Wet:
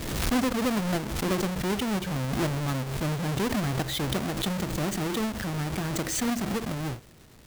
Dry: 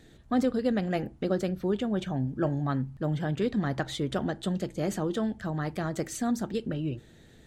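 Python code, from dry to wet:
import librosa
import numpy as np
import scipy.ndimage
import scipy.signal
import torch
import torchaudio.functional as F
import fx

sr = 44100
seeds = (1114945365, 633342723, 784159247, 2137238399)

y = fx.halfwave_hold(x, sr)
y = fx.dmg_crackle(y, sr, seeds[0], per_s=520.0, level_db=-39.0)
y = fx.pre_swell(y, sr, db_per_s=37.0)
y = y * 10.0 ** (-4.5 / 20.0)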